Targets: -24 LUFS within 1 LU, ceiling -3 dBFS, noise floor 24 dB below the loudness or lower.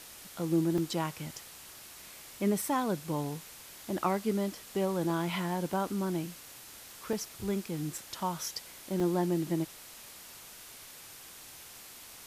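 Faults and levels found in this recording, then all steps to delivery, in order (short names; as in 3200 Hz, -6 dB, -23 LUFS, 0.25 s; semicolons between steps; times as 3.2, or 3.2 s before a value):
dropouts 7; longest dropout 2.5 ms; noise floor -50 dBFS; noise floor target -57 dBFS; loudness -33.0 LUFS; peak -16.0 dBFS; loudness target -24.0 LUFS
-> interpolate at 0.78/2.62/5.1/5.73/7.13/7.98/9, 2.5 ms; noise print and reduce 7 dB; gain +9 dB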